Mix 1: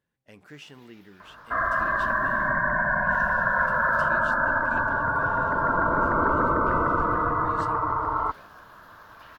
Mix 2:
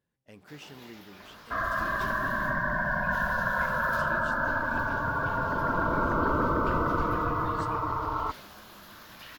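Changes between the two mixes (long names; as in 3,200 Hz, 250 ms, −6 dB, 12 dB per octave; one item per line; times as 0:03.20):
first sound +11.5 dB
second sound: add parametric band 740 Hz −3 dB 2 octaves
master: add parametric band 1,800 Hz −4 dB 2.1 octaves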